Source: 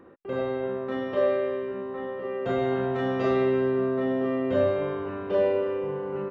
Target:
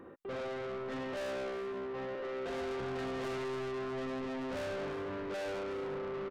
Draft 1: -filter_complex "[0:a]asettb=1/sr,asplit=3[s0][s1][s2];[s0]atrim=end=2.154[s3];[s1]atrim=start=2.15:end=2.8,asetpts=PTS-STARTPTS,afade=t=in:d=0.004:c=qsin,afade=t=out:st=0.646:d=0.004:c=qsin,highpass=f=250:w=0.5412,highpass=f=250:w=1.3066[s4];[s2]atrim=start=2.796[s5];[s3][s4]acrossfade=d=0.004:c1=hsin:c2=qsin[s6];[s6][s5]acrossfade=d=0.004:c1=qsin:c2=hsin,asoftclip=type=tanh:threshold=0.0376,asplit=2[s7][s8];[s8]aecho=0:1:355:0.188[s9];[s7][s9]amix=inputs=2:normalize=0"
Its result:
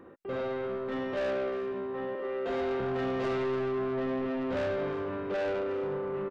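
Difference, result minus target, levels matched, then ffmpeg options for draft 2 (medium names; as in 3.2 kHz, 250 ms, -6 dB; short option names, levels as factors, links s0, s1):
saturation: distortion -4 dB
-filter_complex "[0:a]asettb=1/sr,asplit=3[s0][s1][s2];[s0]atrim=end=2.154[s3];[s1]atrim=start=2.15:end=2.8,asetpts=PTS-STARTPTS,afade=t=in:d=0.004:c=qsin,afade=t=out:st=0.646:d=0.004:c=qsin,highpass=f=250:w=0.5412,highpass=f=250:w=1.3066[s4];[s2]atrim=start=2.796[s5];[s3][s4]acrossfade=d=0.004:c1=hsin:c2=qsin[s6];[s6][s5]acrossfade=d=0.004:c1=qsin:c2=hsin,asoftclip=type=tanh:threshold=0.0141,asplit=2[s7][s8];[s8]aecho=0:1:355:0.188[s9];[s7][s9]amix=inputs=2:normalize=0"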